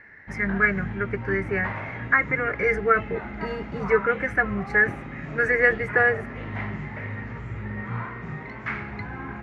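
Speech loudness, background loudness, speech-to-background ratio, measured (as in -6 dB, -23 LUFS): -23.5 LUFS, -34.0 LUFS, 10.5 dB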